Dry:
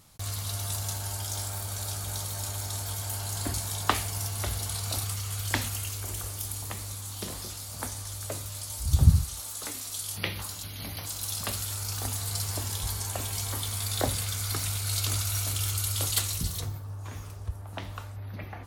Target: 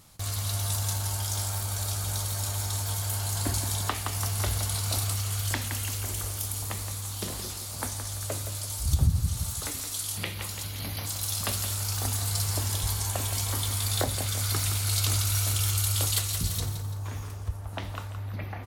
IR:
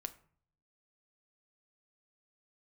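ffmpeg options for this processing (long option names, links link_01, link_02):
-af "aecho=1:1:169|338|507|676:0.335|0.137|0.0563|0.0231,alimiter=limit=-15dB:level=0:latency=1:release=387,volume=2dB"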